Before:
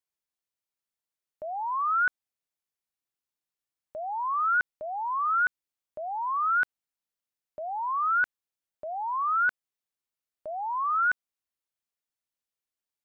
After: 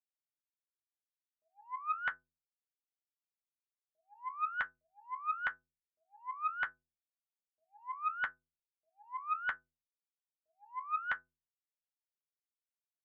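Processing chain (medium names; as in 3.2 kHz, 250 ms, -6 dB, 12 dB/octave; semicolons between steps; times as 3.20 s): gate -30 dBFS, range -38 dB; inharmonic resonator 75 Hz, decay 0.52 s, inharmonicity 0.03; loudspeaker Doppler distortion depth 0.42 ms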